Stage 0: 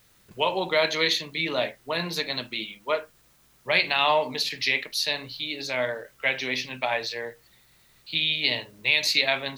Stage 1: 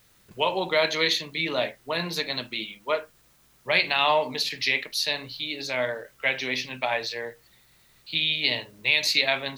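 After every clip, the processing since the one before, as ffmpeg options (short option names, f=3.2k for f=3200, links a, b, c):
-af anull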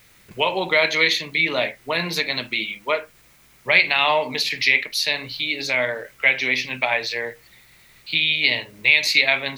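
-filter_complex "[0:a]equalizer=f=2.2k:w=2.9:g=8,asplit=2[a][b];[b]acompressor=threshold=-29dB:ratio=6,volume=0dB[c];[a][c]amix=inputs=2:normalize=0"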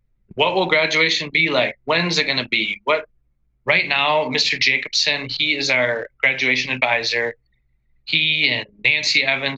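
-filter_complex "[0:a]anlmdn=3.98,acrossover=split=320[a][b];[b]acompressor=threshold=-20dB:ratio=6[c];[a][c]amix=inputs=2:normalize=0,aresample=16000,aresample=44100,volume=6.5dB"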